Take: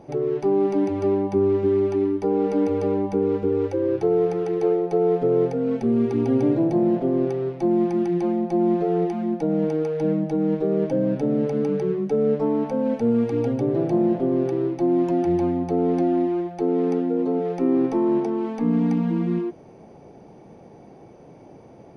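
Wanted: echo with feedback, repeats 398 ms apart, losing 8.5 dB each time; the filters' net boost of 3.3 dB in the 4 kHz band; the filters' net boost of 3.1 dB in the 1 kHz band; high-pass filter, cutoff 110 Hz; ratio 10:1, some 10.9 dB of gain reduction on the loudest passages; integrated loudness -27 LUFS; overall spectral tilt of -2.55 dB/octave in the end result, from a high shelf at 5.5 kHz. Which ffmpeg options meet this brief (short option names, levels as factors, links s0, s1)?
-af "highpass=110,equalizer=f=1000:t=o:g=4.5,equalizer=f=4000:t=o:g=3,highshelf=f=5500:g=3,acompressor=threshold=0.0447:ratio=10,aecho=1:1:398|796|1194|1592:0.376|0.143|0.0543|0.0206,volume=1.41"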